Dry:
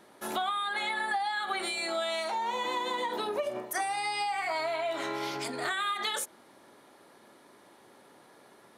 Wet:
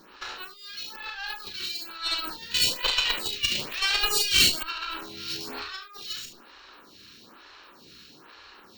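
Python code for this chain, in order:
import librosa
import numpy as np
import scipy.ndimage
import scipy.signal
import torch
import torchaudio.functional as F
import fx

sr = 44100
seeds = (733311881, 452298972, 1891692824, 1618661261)

y = fx.lower_of_two(x, sr, delay_ms=0.72)
y = fx.over_compress(y, sr, threshold_db=-40.0, ratio=-0.5)
y = scipy.signal.sosfilt(scipy.signal.butter(4, 6600.0, 'lowpass', fs=sr, output='sos'), y)
y = fx.peak_eq(y, sr, hz=4300.0, db=14.5, octaves=1.7)
y = fx.room_early_taps(y, sr, ms=(34, 47, 73), db=(-6.0, -10.5, -9.0))
y = np.repeat(scipy.signal.resample_poly(y, 1, 2), 2)[:len(y)]
y = fx.high_shelf_res(y, sr, hz=1700.0, db=12.0, q=1.5, at=(2.54, 4.63))
y = fx.cheby_harmonics(y, sr, harmonics=(2,), levels_db=(-8,), full_scale_db=-11.5)
y = fx.stagger_phaser(y, sr, hz=1.1)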